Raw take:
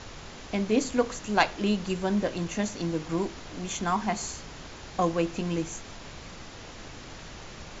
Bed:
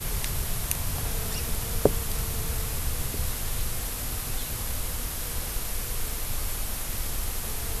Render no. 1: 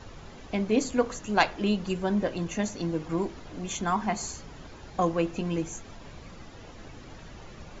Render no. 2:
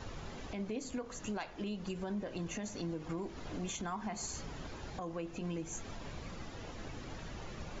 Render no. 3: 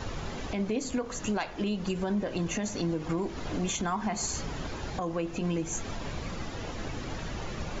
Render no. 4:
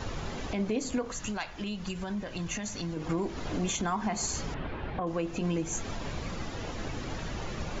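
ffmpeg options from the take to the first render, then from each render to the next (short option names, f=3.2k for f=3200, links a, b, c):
-af "afftdn=nr=9:nf=-44"
-af "acompressor=threshold=-34dB:ratio=6,alimiter=level_in=6.5dB:limit=-24dB:level=0:latency=1:release=65,volume=-6.5dB"
-af "volume=9dB"
-filter_complex "[0:a]asettb=1/sr,asplit=3[a][b][c];[a]atrim=end=1.124[d];[b]atrim=start=1.12:end=2.97,asetpts=PTS-STARTPTS,afade=t=in:d=0.004:c=qsin,afade=t=out:st=1.846:d=0.004:c=qsin,equalizer=f=400:t=o:w=2.1:g=-9[e];[c]atrim=start=2.966[f];[d][e]acrossfade=d=0.004:c1=hsin:c2=qsin[g];[g][f]acrossfade=d=0.004:c1=qsin:c2=hsin,asettb=1/sr,asplit=3[h][i][j];[h]atrim=end=4.544[k];[i]atrim=start=4.54:end=5.07,asetpts=PTS-STARTPTS,afade=t=in:d=0.004:c=qsin,afade=t=out:st=0.526:d=0.004:c=qsin,lowpass=f=3k:w=0.5412,lowpass=f=3k:w=1.3066[l];[j]atrim=start=5.066[m];[k][l]acrossfade=d=0.004:c1=hsin:c2=qsin[n];[n][m]acrossfade=d=0.004:c1=qsin:c2=hsin"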